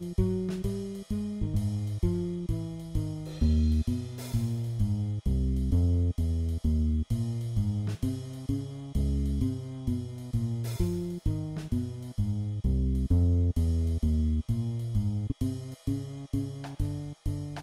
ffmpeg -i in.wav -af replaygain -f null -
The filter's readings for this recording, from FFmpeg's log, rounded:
track_gain = +15.0 dB
track_peak = 0.146